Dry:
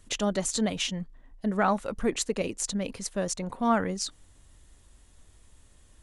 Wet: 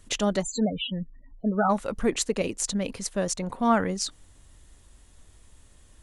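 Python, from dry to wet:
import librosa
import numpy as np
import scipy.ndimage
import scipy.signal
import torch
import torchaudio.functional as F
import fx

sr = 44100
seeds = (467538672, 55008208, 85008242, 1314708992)

y = fx.spec_topn(x, sr, count=16, at=(0.41, 1.69), fade=0.02)
y = F.gain(torch.from_numpy(y), 2.5).numpy()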